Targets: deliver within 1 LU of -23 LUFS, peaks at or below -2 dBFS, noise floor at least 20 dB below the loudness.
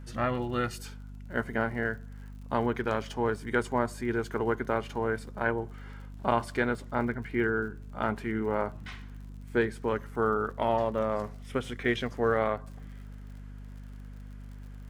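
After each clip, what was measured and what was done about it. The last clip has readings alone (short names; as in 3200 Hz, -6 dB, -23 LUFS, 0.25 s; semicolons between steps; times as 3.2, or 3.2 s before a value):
ticks 59/s; hum 50 Hz; harmonics up to 250 Hz; hum level -41 dBFS; loudness -31.0 LUFS; peak -11.5 dBFS; loudness target -23.0 LUFS
-> de-click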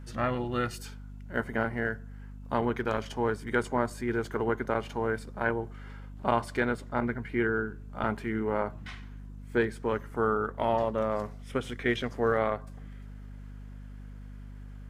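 ticks 0.13/s; hum 50 Hz; harmonics up to 250 Hz; hum level -41 dBFS
-> notches 50/100/150/200/250 Hz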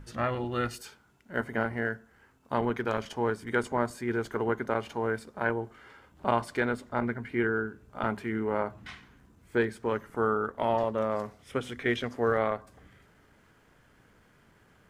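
hum none; loudness -31.0 LUFS; peak -11.5 dBFS; loudness target -23.0 LUFS
-> gain +8 dB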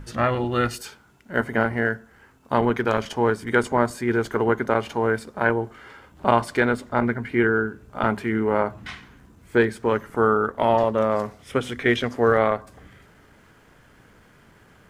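loudness -23.0 LUFS; peak -3.5 dBFS; noise floor -54 dBFS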